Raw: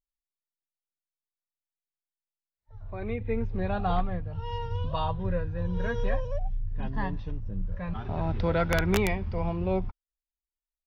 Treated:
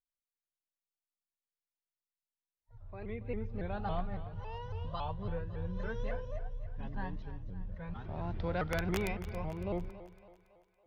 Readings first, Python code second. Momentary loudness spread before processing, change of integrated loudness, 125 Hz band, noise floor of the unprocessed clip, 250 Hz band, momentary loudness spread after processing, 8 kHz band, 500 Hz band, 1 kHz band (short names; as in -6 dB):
10 LU, -9.0 dB, -8.5 dB, under -85 dBFS, -8.5 dB, 11 LU, n/a, -9.0 dB, -9.0 dB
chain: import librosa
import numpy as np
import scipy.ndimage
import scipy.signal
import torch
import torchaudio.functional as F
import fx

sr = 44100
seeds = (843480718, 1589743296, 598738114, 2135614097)

y = fx.echo_split(x, sr, split_hz=430.0, low_ms=150, high_ms=279, feedback_pct=52, wet_db=-14.0)
y = fx.vibrato_shape(y, sr, shape='saw_up', rate_hz=3.6, depth_cents=160.0)
y = y * 10.0 ** (-9.0 / 20.0)